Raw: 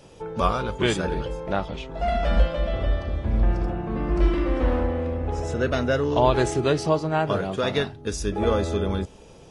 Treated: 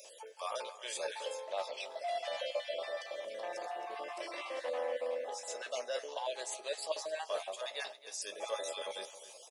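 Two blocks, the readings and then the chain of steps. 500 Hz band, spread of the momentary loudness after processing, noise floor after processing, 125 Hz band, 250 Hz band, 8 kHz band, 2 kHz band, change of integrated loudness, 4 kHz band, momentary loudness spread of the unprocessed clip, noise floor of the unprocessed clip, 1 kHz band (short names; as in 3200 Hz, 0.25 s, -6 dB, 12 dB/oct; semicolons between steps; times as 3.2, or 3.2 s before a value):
-13.5 dB, 5 LU, -54 dBFS, under -40 dB, -34.0 dB, -4.0 dB, -12.0 dB, -15.0 dB, -7.5 dB, 6 LU, -48 dBFS, -13.5 dB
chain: random spectral dropouts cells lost 28%; differentiator; notch 1400 Hz, Q 5.3; reverse; compressor 6:1, threshold -49 dBFS, peak gain reduction 16.5 dB; reverse; resonant high-pass 570 Hz, resonance Q 4.9; doubler 16 ms -12 dB; echo 0.267 s -15 dB; gain +8 dB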